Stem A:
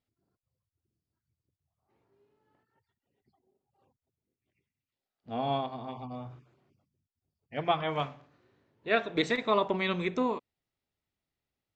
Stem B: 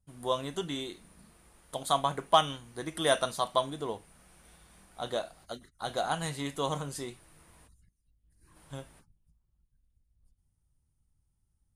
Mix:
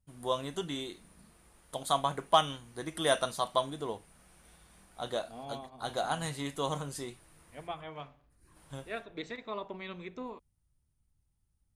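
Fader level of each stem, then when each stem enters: -12.5, -1.5 dB; 0.00, 0.00 s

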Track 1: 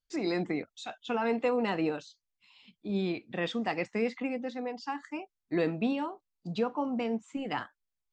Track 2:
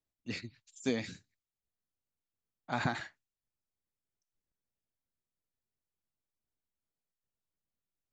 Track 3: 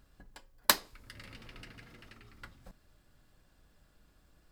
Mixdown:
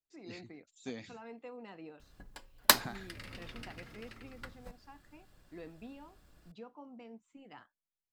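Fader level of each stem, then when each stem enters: -19.5, -10.0, +2.5 dB; 0.00, 0.00, 2.00 s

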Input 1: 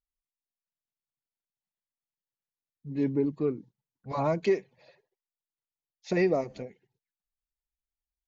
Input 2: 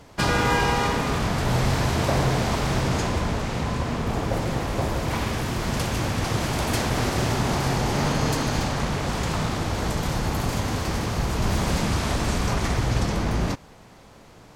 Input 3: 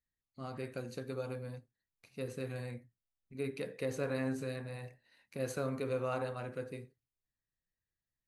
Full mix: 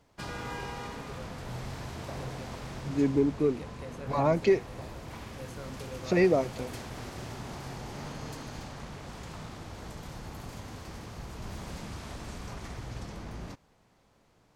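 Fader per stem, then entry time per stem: +2.0, -17.0, -8.0 dB; 0.00, 0.00, 0.00 s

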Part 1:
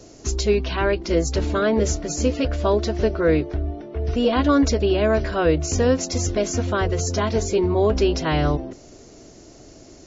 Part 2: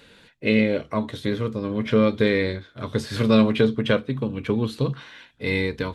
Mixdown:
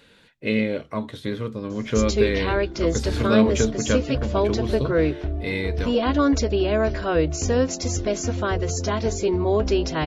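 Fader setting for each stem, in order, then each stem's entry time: -2.0, -3.0 dB; 1.70, 0.00 s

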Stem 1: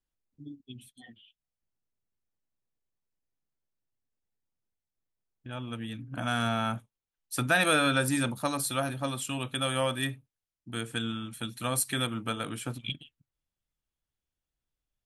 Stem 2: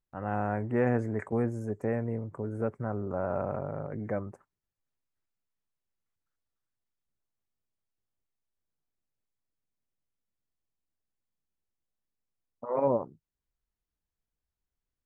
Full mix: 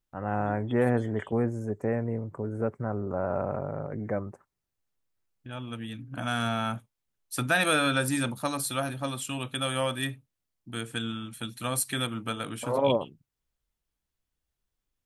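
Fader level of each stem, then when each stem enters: 0.0, +2.0 dB; 0.00, 0.00 s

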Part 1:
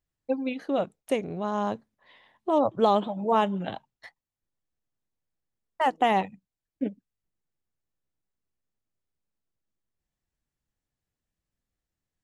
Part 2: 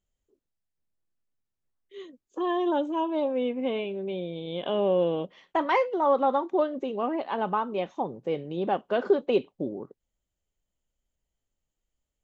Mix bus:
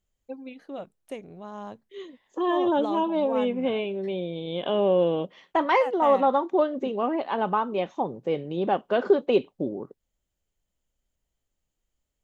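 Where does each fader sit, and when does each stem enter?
-10.5, +2.5 dB; 0.00, 0.00 s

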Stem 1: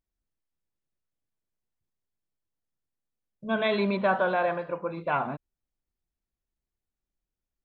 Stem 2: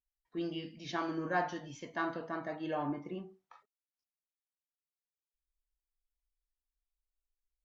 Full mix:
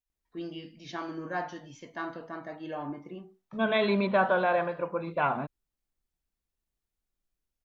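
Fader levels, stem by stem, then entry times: 0.0, -1.0 dB; 0.10, 0.00 s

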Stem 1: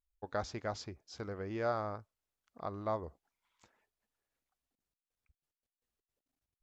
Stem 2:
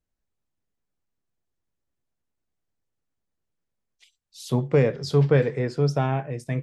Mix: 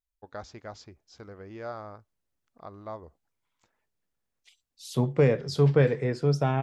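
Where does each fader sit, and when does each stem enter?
-3.5, -2.0 dB; 0.00, 0.45 s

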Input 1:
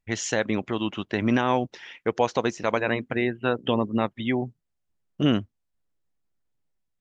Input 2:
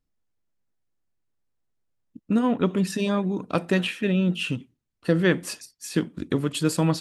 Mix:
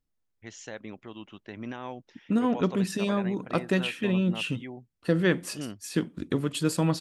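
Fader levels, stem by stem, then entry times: -15.5, -3.0 dB; 0.35, 0.00 s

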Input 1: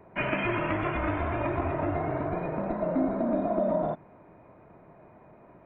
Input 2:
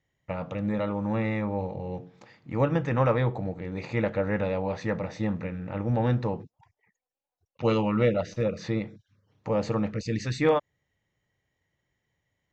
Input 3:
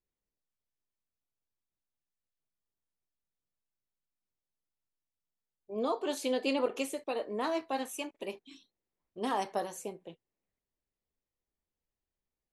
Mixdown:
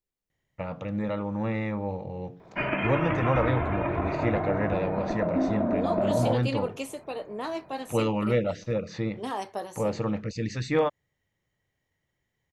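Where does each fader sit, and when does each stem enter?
+0.5, -1.5, -0.5 dB; 2.40, 0.30, 0.00 s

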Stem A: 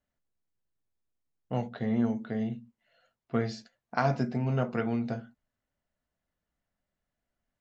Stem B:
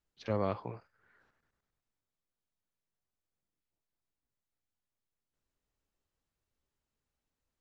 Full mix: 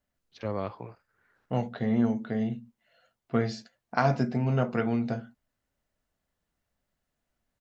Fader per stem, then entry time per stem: +2.5, 0.0 dB; 0.00, 0.15 s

